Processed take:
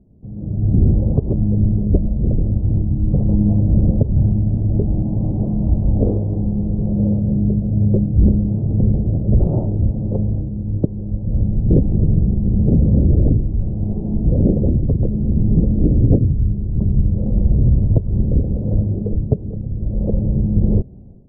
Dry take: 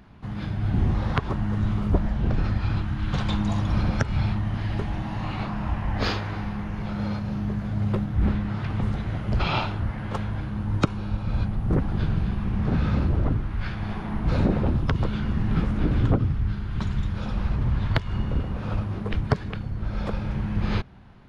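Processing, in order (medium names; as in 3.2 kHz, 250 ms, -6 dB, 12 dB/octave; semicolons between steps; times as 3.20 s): steep low-pass 560 Hz 36 dB/octave; level rider gain up to 13 dB; trim -1 dB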